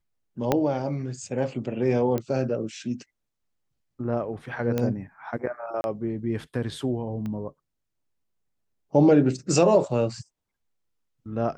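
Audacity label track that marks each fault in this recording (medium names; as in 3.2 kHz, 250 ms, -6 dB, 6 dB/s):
0.520000	0.520000	pop -8 dBFS
2.180000	2.180000	pop -15 dBFS
4.780000	4.780000	pop -13 dBFS
5.810000	5.840000	dropout 31 ms
7.260000	7.260000	pop -23 dBFS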